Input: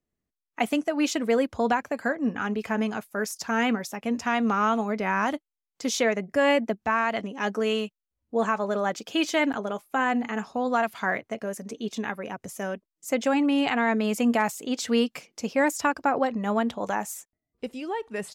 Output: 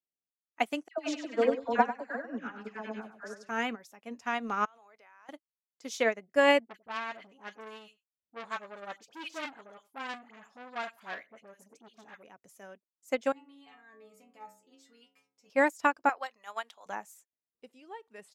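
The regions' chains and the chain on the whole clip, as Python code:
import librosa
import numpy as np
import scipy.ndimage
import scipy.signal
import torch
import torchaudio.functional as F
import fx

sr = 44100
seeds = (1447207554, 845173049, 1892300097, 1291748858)

y = fx.chain(x, sr, fx.air_absorb(metres=91.0),
    fx.dispersion(late='lows', ms=100.0, hz=1400.0),
    fx.echo_feedback(ms=97, feedback_pct=32, wet_db=-4.5), at=(0.88, 3.49))
y = fx.chain(y, sr, fx.highpass(hz=640.0, slope=12),
    fx.level_steps(step_db=20), at=(4.65, 5.29))
y = fx.chain(y, sr, fx.dispersion(late='highs', ms=63.0, hz=1200.0),
    fx.echo_single(ms=93, db=-22.0),
    fx.transformer_sat(knee_hz=2000.0), at=(6.66, 12.23))
y = fx.chain(y, sr, fx.low_shelf(hz=120.0, db=11.5),
    fx.stiff_resonator(f0_hz=64.0, decay_s=0.78, stiffness=0.008), at=(13.32, 15.5))
y = fx.chain(y, sr, fx.highpass(hz=830.0, slope=12),
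    fx.high_shelf(hz=2100.0, db=8.5), at=(16.09, 16.86))
y = fx.highpass(y, sr, hz=340.0, slope=6)
y = fx.upward_expand(y, sr, threshold_db=-33.0, expansion=2.5)
y = y * librosa.db_to_amplitude(2.0)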